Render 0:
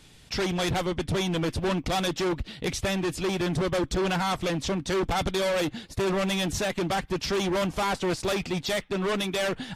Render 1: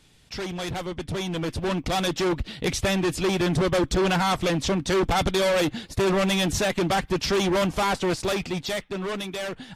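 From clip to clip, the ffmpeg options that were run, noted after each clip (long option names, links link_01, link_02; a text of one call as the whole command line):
ffmpeg -i in.wav -af "dynaudnorm=framelen=320:gausssize=11:maxgain=8.5dB,volume=-4.5dB" out.wav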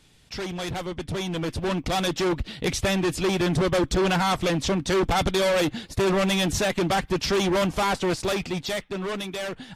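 ffmpeg -i in.wav -af anull out.wav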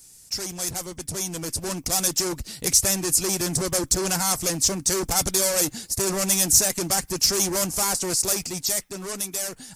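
ffmpeg -i in.wav -af "aexciter=amount=7.6:drive=8.7:freq=5100,volume=-5dB" out.wav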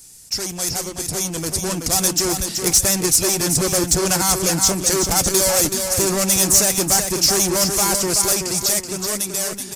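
ffmpeg -i in.wav -filter_complex "[0:a]asoftclip=type=tanh:threshold=-12dB,asplit=2[link_01][link_02];[link_02]aecho=0:1:378|756|1134|1512:0.501|0.16|0.0513|0.0164[link_03];[link_01][link_03]amix=inputs=2:normalize=0,volume=5.5dB" out.wav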